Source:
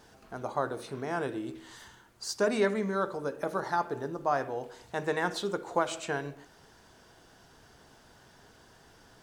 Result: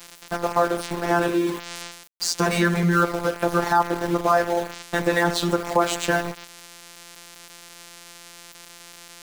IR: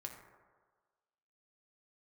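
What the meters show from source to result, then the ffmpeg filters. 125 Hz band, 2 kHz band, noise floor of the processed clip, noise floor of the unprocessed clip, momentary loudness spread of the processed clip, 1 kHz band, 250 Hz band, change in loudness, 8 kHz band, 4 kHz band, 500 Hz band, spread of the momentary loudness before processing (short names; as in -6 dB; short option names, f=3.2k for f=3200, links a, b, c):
+14.0 dB, +11.0 dB, -47 dBFS, -59 dBFS, 22 LU, +10.0 dB, +11.5 dB, +10.0 dB, +12.5 dB, +12.0 dB, +8.0 dB, 13 LU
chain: -filter_complex "[0:a]highpass=f=120:w=0.5412,highpass=f=120:w=1.3066,asplit=2[a][b];[b]acompressor=threshold=-42dB:ratio=6,volume=0dB[c];[a][c]amix=inputs=2:normalize=0,afftfilt=real='hypot(re,im)*cos(PI*b)':imag='0':win_size=1024:overlap=0.75,acontrast=82,aeval=exprs='val(0)*gte(abs(val(0)),0.0188)':c=same,alimiter=level_in=11dB:limit=-1dB:release=50:level=0:latency=1,volume=-4.5dB"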